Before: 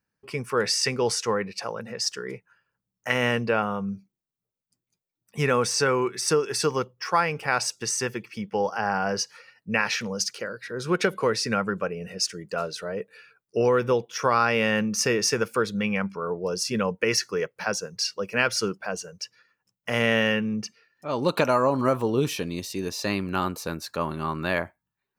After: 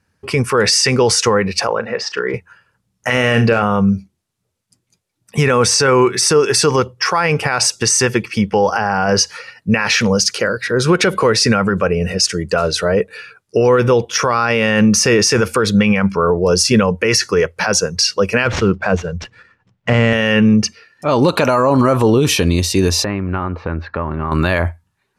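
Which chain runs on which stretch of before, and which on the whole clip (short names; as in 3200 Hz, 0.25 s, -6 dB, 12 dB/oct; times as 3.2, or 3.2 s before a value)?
1.67–2.34 LPF 5100 Hz + tone controls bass -12 dB, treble -15 dB + doubler 37 ms -14 dB
3.13–3.62 hard clip -11 dBFS + notch 960 Hz, Q 5.6 + flutter echo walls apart 6 m, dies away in 0.21 s
18.45–20.13 median filter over 9 samples + LPF 4500 Hz + low shelf 180 Hz +9.5 dB
23.04–24.32 LPF 2200 Hz 24 dB/oct + compressor 3:1, threshold -37 dBFS
whole clip: LPF 12000 Hz 24 dB/oct; bell 84 Hz +14 dB 0.4 oct; maximiser +20 dB; gain -3.5 dB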